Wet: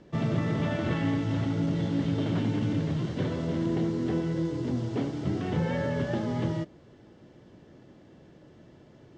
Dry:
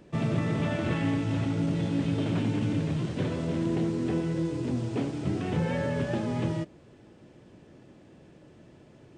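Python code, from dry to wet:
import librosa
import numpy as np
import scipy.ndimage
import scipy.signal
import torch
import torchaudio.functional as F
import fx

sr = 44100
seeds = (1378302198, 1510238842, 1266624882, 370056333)

y = scipy.signal.sosfilt(scipy.signal.butter(4, 6800.0, 'lowpass', fs=sr, output='sos'), x)
y = fx.notch(y, sr, hz=2500.0, q=8.7)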